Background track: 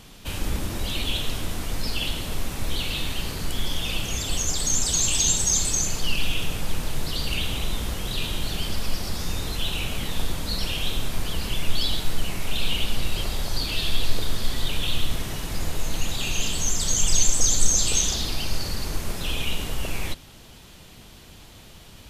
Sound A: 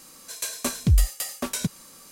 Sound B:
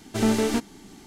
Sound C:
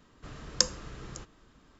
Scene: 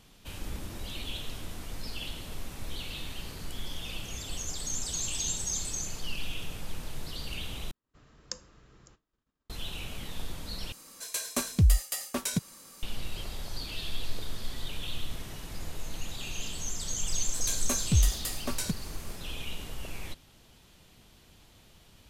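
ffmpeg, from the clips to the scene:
ffmpeg -i bed.wav -i cue0.wav -i cue1.wav -i cue2.wav -filter_complex "[1:a]asplit=2[link_01][link_02];[0:a]volume=-11dB[link_03];[3:a]agate=range=-33dB:threshold=-52dB:ratio=3:release=100:detection=peak[link_04];[link_03]asplit=3[link_05][link_06][link_07];[link_05]atrim=end=7.714[link_08];[link_04]atrim=end=1.79,asetpts=PTS-STARTPTS,volume=-14dB[link_09];[link_06]atrim=start=9.496:end=10.724[link_10];[link_01]atrim=end=2.11,asetpts=PTS-STARTPTS,volume=-3dB[link_11];[link_07]atrim=start=12.826[link_12];[link_02]atrim=end=2.11,asetpts=PTS-STARTPTS,volume=-5dB,afade=type=in:duration=0.004:curve=hsin,afade=type=out:start_time=2.106:duration=0.004:curve=hsin,adelay=17050[link_13];[link_08][link_09]acrossfade=duration=0.004:curve1=hsin:curve2=hsin[link_14];[link_14][link_10]acrossfade=duration=0.004:curve1=hsin:curve2=hsin[link_15];[link_15][link_11]acrossfade=duration=0.004:curve1=hsin:curve2=hsin[link_16];[link_16][link_12]acrossfade=duration=0.004:curve1=hsin:curve2=hsin[link_17];[link_17][link_13]amix=inputs=2:normalize=0" out.wav

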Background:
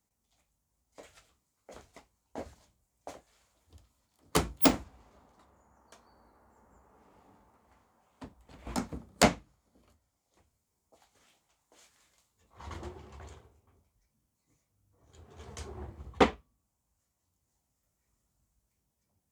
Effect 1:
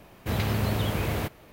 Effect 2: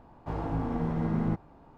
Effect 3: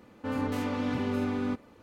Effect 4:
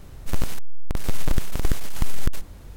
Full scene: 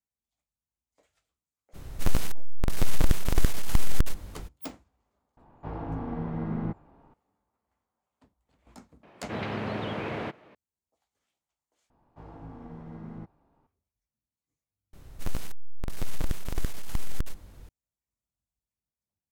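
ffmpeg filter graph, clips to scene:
ffmpeg -i bed.wav -i cue0.wav -i cue1.wav -i cue2.wav -i cue3.wav -filter_complex "[4:a]asplit=2[link_01][link_02];[2:a]asplit=2[link_03][link_04];[0:a]volume=-16.5dB[link_05];[link_03]lowpass=3500[link_06];[1:a]highpass=190,lowpass=2700[link_07];[link_05]asplit=3[link_08][link_09][link_10];[link_08]atrim=end=11.904[link_11];[link_04]atrim=end=1.77,asetpts=PTS-STARTPTS,volume=-13.5dB[link_12];[link_09]atrim=start=13.666:end=14.934[link_13];[link_02]atrim=end=2.76,asetpts=PTS-STARTPTS,volume=-7dB[link_14];[link_10]atrim=start=17.686[link_15];[link_01]atrim=end=2.76,asetpts=PTS-STARTPTS,afade=type=in:duration=0.02,afade=type=out:start_time=2.74:duration=0.02,adelay=1730[link_16];[link_06]atrim=end=1.77,asetpts=PTS-STARTPTS,volume=-3dB,afade=type=in:duration=0.004:curve=hsin,afade=type=out:start_time=1.766:duration=0.004:curve=hsin,adelay=236817S[link_17];[link_07]atrim=end=1.52,asetpts=PTS-STARTPTS,volume=-1.5dB,afade=type=in:duration=0.004:curve=hsin,afade=type=out:start_time=1.516:duration=0.004:curve=hsin,adelay=9030[link_18];[link_11][link_12]acrossfade=duration=0.004:curve1=hsin:curve2=hsin[link_19];[link_19][link_13]acrossfade=duration=0.004:curve1=hsin:curve2=hsin[link_20];[link_20][link_14]acrossfade=duration=0.004:curve1=hsin:curve2=hsin[link_21];[link_21][link_15]acrossfade=duration=0.004:curve1=hsin:curve2=hsin[link_22];[link_22][link_16][link_17][link_18]amix=inputs=4:normalize=0" out.wav

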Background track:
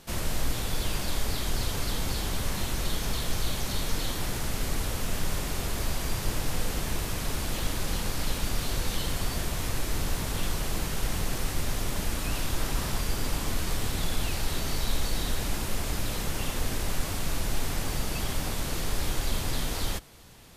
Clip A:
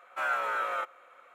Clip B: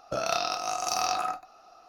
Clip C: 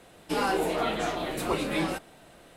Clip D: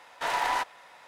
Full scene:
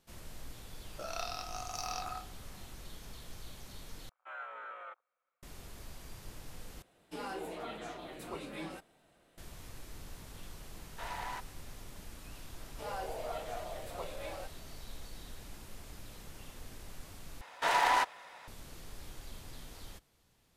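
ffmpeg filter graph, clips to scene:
ffmpeg -i bed.wav -i cue0.wav -i cue1.wav -i cue2.wav -i cue3.wav -filter_complex "[3:a]asplit=2[link_01][link_02];[4:a]asplit=2[link_03][link_04];[0:a]volume=-19dB[link_05];[2:a]equalizer=frequency=130:width_type=o:width=2.2:gain=-13.5[link_06];[1:a]afwtdn=0.00708[link_07];[link_02]highpass=frequency=590:width_type=q:width=3.2[link_08];[link_05]asplit=4[link_09][link_10][link_11][link_12];[link_09]atrim=end=4.094[link_13];[link_07]atrim=end=1.34,asetpts=PTS-STARTPTS,volume=-15dB[link_14];[link_10]atrim=start=5.426:end=6.824[link_15];[link_01]atrim=end=2.56,asetpts=PTS-STARTPTS,volume=-14.5dB[link_16];[link_11]atrim=start=9.376:end=17.414[link_17];[link_04]atrim=end=1.07[link_18];[link_12]atrim=start=18.476[link_19];[link_06]atrim=end=1.88,asetpts=PTS-STARTPTS,volume=-11dB,afade=type=in:duration=0.004:curve=hsin,afade=type=out:start_time=1.876:duration=0.004:curve=hsin,adelay=870[link_20];[link_03]atrim=end=1.07,asetpts=PTS-STARTPTS,volume=-14dB,afade=type=in:duration=0.004:curve=hsin,afade=type=out:start_time=1.066:duration=0.004:curve=hsin,adelay=10770[link_21];[link_08]atrim=end=2.56,asetpts=PTS-STARTPTS,volume=-17.5dB,afade=type=in:duration=0.004:curve=hsin,afade=type=out:start_time=2.556:duration=0.004:curve=hsin,adelay=12490[link_22];[link_13][link_14]acrossfade=duration=0.004:curve1=hsin:curve2=hsin[link_23];[link_23][link_15]acrossfade=duration=0.004:curve1=hsin:curve2=hsin[link_24];[link_24][link_16]acrossfade=duration=0.004:curve1=hsin:curve2=hsin[link_25];[link_25][link_17]acrossfade=duration=0.004:curve1=hsin:curve2=hsin[link_26];[link_26][link_18]acrossfade=duration=0.004:curve1=hsin:curve2=hsin[link_27];[link_27][link_19]acrossfade=duration=0.004:curve1=hsin:curve2=hsin[link_28];[link_28][link_20][link_21][link_22]amix=inputs=4:normalize=0" out.wav

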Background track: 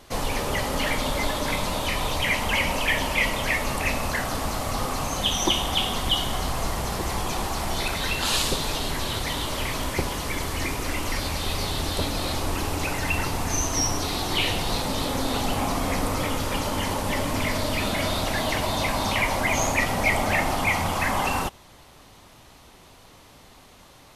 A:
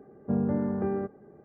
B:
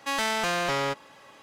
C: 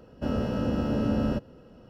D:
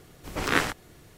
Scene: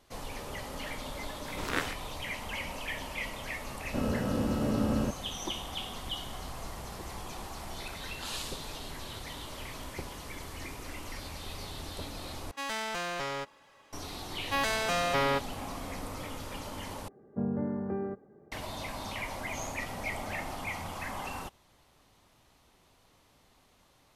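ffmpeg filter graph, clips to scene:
ffmpeg -i bed.wav -i cue0.wav -i cue1.wav -i cue2.wav -i cue3.wav -filter_complex "[2:a]asplit=2[link_01][link_02];[0:a]volume=-14dB[link_03];[link_01]asubboost=boost=7.5:cutoff=79[link_04];[link_02]aecho=1:1:7.3:0.78[link_05];[link_03]asplit=3[link_06][link_07][link_08];[link_06]atrim=end=12.514[link_09];[link_04]atrim=end=1.42,asetpts=PTS-STARTPTS,volume=-8dB[link_10];[link_07]atrim=start=13.926:end=17.084[link_11];[1:a]atrim=end=1.44,asetpts=PTS-STARTPTS,volume=-5dB[link_12];[link_08]atrim=start=18.516[link_13];[4:a]atrim=end=1.17,asetpts=PTS-STARTPTS,volume=-8.5dB,afade=type=in:duration=0.004:curve=hsin,afade=type=out:start_time=1.166:duration=0.004:curve=hsin,adelay=1210[link_14];[3:a]atrim=end=1.89,asetpts=PTS-STARTPTS,volume=-3dB,afade=type=in:duration=0.004:curve=hsin,afade=type=out:start_time=1.886:duration=0.004:curve=hsin,adelay=3720[link_15];[link_05]atrim=end=1.42,asetpts=PTS-STARTPTS,volume=-5dB,afade=type=in:duration=0.004:curve=hsin,afade=type=out:start_time=1.416:duration=0.004:curve=hsin,adelay=14450[link_16];[link_09][link_10]acrossfade=duration=0.004:curve1=hsin:curve2=hsin[link_17];[link_17][link_11]acrossfade=duration=0.004:curve1=hsin:curve2=hsin[link_18];[link_18][link_12]acrossfade=duration=0.004:curve1=hsin:curve2=hsin[link_19];[link_19][link_13]acrossfade=duration=0.004:curve1=hsin:curve2=hsin[link_20];[link_20][link_14][link_15][link_16]amix=inputs=4:normalize=0" out.wav

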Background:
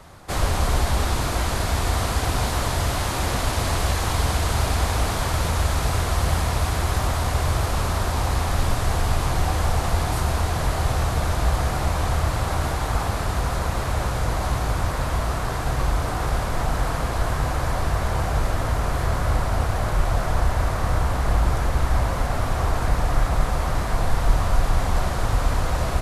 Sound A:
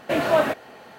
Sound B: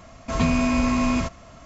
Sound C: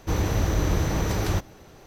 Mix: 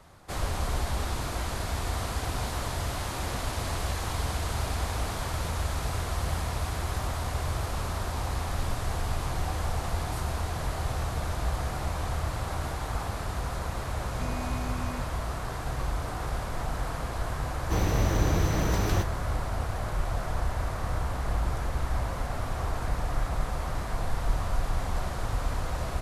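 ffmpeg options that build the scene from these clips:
ffmpeg -i bed.wav -i cue0.wav -i cue1.wav -i cue2.wav -filter_complex "[0:a]volume=-8.5dB[link_01];[2:a]atrim=end=1.65,asetpts=PTS-STARTPTS,volume=-17.5dB,afade=type=in:duration=0.004:curve=hsin,afade=type=out:start_time=1.646:duration=0.004:curve=hsin,adelay=608580S[link_02];[3:a]atrim=end=1.86,asetpts=PTS-STARTPTS,volume=-2dB,afade=type=in:duration=0.004:curve=hsin,afade=type=out:start_time=1.856:duration=0.004:curve=hsin,adelay=17630[link_03];[link_01][link_02][link_03]amix=inputs=3:normalize=0" out.wav

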